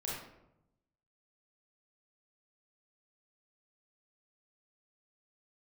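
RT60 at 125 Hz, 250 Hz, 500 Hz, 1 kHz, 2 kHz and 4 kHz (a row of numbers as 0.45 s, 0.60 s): 1.3 s, 1.1 s, 0.90 s, 0.80 s, 0.60 s, 0.50 s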